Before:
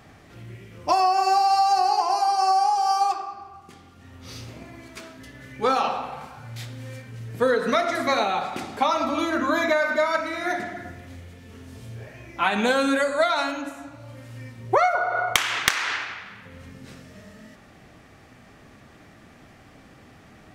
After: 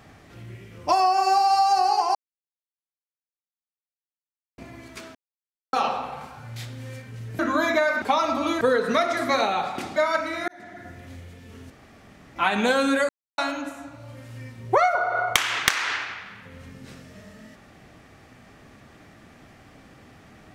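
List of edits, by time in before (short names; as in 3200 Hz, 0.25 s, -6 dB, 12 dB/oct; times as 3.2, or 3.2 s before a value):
2.15–4.58 mute
5.15–5.73 mute
7.39–8.74 swap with 9.33–9.96
10.48–11.07 fade in
11.7–12.36 room tone
13.09–13.38 mute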